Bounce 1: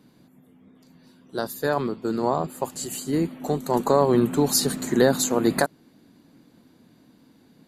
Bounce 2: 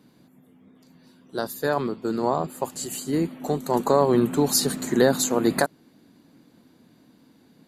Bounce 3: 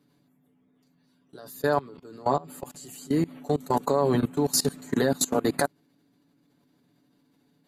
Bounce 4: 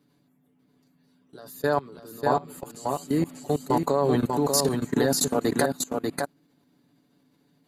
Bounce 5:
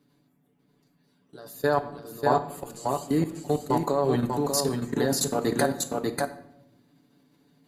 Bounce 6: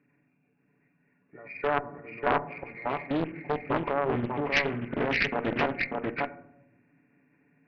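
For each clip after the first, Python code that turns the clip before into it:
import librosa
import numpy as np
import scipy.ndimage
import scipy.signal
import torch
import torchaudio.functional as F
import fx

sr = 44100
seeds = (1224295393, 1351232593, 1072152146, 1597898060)

y1 = fx.low_shelf(x, sr, hz=76.0, db=-5.0)
y2 = y1 + 0.64 * np.pad(y1, (int(7.0 * sr / 1000.0), 0))[:len(y1)]
y2 = fx.level_steps(y2, sr, step_db=22)
y3 = y2 + 10.0 ** (-4.0 / 20.0) * np.pad(y2, (int(592 * sr / 1000.0), 0))[:len(y2)]
y4 = fx.room_shoebox(y3, sr, seeds[0], volume_m3=190.0, walls='mixed', distance_m=0.32)
y4 = fx.rider(y4, sr, range_db=3, speed_s=2.0)
y4 = y4 * 10.0 ** (-1.5 / 20.0)
y5 = fx.freq_compress(y4, sr, knee_hz=1400.0, ratio=4.0)
y5 = fx.cheby_harmonics(y5, sr, harmonics=(2,), levels_db=(-7,), full_scale_db=-8.5)
y5 = fx.doppler_dist(y5, sr, depth_ms=0.89)
y5 = y5 * 10.0 ** (-3.5 / 20.0)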